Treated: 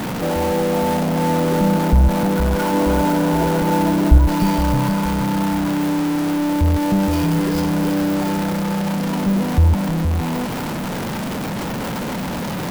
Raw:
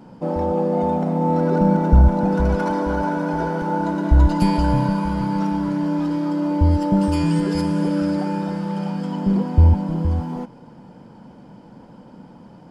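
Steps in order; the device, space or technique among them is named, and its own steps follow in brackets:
0:02.73–0:04.18: tilt shelving filter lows +6 dB, about 1,400 Hz
early CD player with a faulty converter (converter with a step at zero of −16 dBFS; converter with an unsteady clock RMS 0.026 ms)
level −3 dB

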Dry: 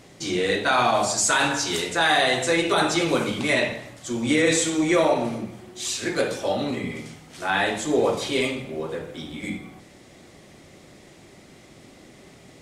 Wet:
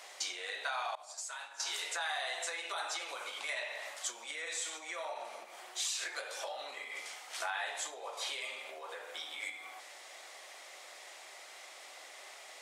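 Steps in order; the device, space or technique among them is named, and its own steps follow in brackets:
serial compression, peaks first (downward compressor 6 to 1, threshold −31 dBFS, peak gain reduction 14.5 dB; downward compressor 2.5 to 1, threshold −37 dBFS, peak gain reduction 6 dB)
high-pass filter 680 Hz 24 dB per octave
0:00.95–0:01.60: downward expander −31 dBFS
level +2.5 dB

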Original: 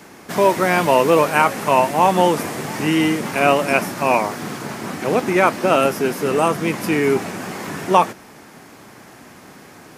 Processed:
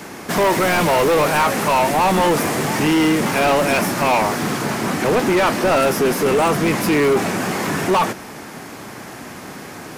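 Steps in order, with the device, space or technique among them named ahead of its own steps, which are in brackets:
saturation between pre-emphasis and de-emphasis (high-shelf EQ 3,400 Hz +8.5 dB; soft clipping −20.5 dBFS, distortion −5 dB; high-shelf EQ 3,400 Hz −8.5 dB)
level +8.5 dB

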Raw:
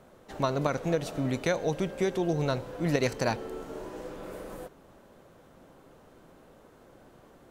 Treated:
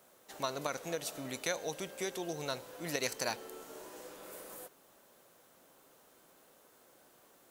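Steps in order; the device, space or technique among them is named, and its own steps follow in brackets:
turntable without a phono preamp (RIAA equalisation recording; white noise bed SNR 34 dB)
level −7 dB

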